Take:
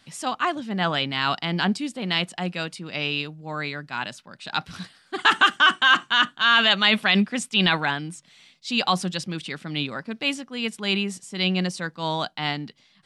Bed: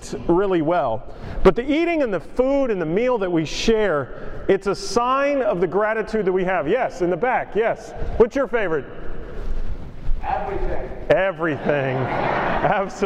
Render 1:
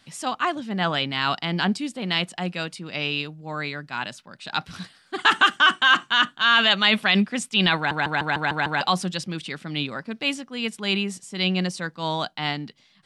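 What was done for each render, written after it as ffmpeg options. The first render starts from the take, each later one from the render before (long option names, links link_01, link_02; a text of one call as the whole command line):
ffmpeg -i in.wav -filter_complex "[0:a]asplit=8[link_01][link_02][link_03][link_04][link_05][link_06][link_07][link_08];[link_01]atrim=end=7.912[link_09];[link_02]atrim=start=7.758:end=7.912[link_10];[link_03]atrim=start=7.758:end=7.912[link_11];[link_04]atrim=start=7.758:end=7.912[link_12];[link_05]atrim=start=7.758:end=7.912[link_13];[link_06]atrim=start=7.758:end=7.912[link_14];[link_07]atrim=start=7.758:end=7.912[link_15];[link_08]atrim=start=8.808[link_16];[link_09][link_10]acrossfade=duration=0.004:curve1=hsin:curve2=hsin[link_17];[link_17][link_11]acrossfade=duration=0.004:curve1=hsin:curve2=hsin[link_18];[link_18][link_12]acrossfade=duration=0.004:curve1=hsin:curve2=hsin[link_19];[link_19][link_13]acrossfade=duration=0.004:curve1=hsin:curve2=hsin[link_20];[link_20][link_14]acrossfade=duration=0.004:curve1=hsin:curve2=hsin[link_21];[link_21][link_15]acrossfade=duration=0.004:curve1=hsin:curve2=hsin[link_22];[link_22][link_16]acrossfade=duration=0.004:curve1=hsin:curve2=hsin" out.wav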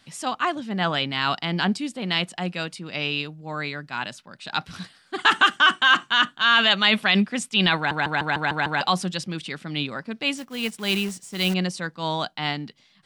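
ffmpeg -i in.wav -filter_complex "[0:a]asettb=1/sr,asplit=3[link_01][link_02][link_03];[link_01]atrim=end=10.374[link_04];[link_02]atrim=start=10.37:end=11.54,asetpts=PTS-STARTPTS,afade=type=in:duration=0.004:curve=qsin,afade=type=out:start_time=1.166:duration=0.004:curve=qsin,acrusher=bits=3:mode=log:mix=0:aa=0.000001[link_05];[link_03]atrim=start=11.536[link_06];[link_04][link_05]acrossfade=duration=0.004:curve1=hsin:curve2=qsin[link_07];[link_07][link_06]acrossfade=duration=0.004:curve1=qsin:curve2=hsin" out.wav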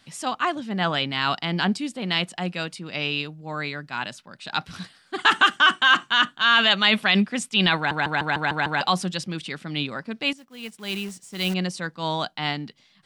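ffmpeg -i in.wav -filter_complex "[0:a]asplit=2[link_01][link_02];[link_01]atrim=end=10.33,asetpts=PTS-STARTPTS,afade=type=out:start_time=10.326:duration=0.004:curve=hsin:silence=0.188365[link_03];[link_02]atrim=start=10.33,asetpts=PTS-STARTPTS,afade=type=in:duration=1.57:silence=0.188365[link_04];[link_03][link_04]concat=n=2:v=0:a=1" out.wav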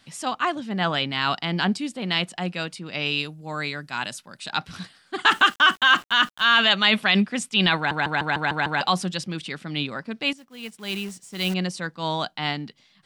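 ffmpeg -i in.wav -filter_complex "[0:a]asettb=1/sr,asplit=3[link_01][link_02][link_03];[link_01]atrim=end=3.064[link_04];[link_02]atrim=start=3.06:end=4.5,asetpts=PTS-STARTPTS,afade=type=in:duration=0.004:curve=qsin,afade=type=out:start_time=1.436:duration=0.004:curve=qsin,equalizer=frequency=11000:width=0.58:gain=12[link_05];[link_03]atrim=start=4.496[link_06];[link_04][link_05]acrossfade=duration=0.004:curve1=hsin:curve2=qsin[link_07];[link_07][link_06]acrossfade=duration=0.004:curve1=qsin:curve2=hsin,asettb=1/sr,asplit=3[link_08][link_09][link_10];[link_08]atrim=end=5.294[link_11];[link_09]atrim=start=5.29:end=6.57,asetpts=PTS-STARTPTS,afade=type=in:duration=0.004:curve=qsin,afade=type=out:start_time=1.276:duration=0.004:curve=qsin,aeval=exprs='val(0)*gte(abs(val(0)),0.00891)':channel_layout=same[link_12];[link_10]atrim=start=6.566[link_13];[link_11][link_12]acrossfade=duration=0.004:curve1=hsin:curve2=qsin[link_14];[link_14][link_13]acrossfade=duration=0.004:curve1=qsin:curve2=hsin" out.wav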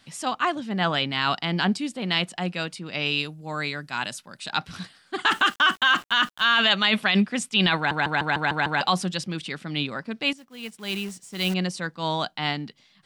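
ffmpeg -i in.wav -af "alimiter=limit=-9.5dB:level=0:latency=1:release=21" out.wav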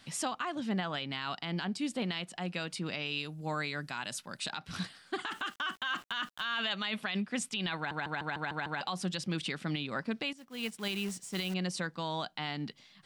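ffmpeg -i in.wav -af "acompressor=threshold=-29dB:ratio=6,alimiter=limit=-23.5dB:level=0:latency=1:release=168" out.wav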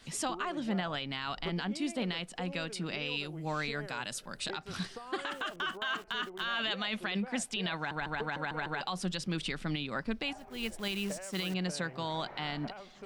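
ffmpeg -i in.wav -i bed.wav -filter_complex "[1:a]volume=-27dB[link_01];[0:a][link_01]amix=inputs=2:normalize=0" out.wav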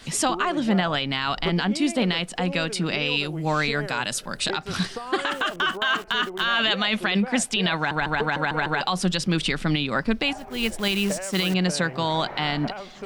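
ffmpeg -i in.wav -af "volume=11.5dB" out.wav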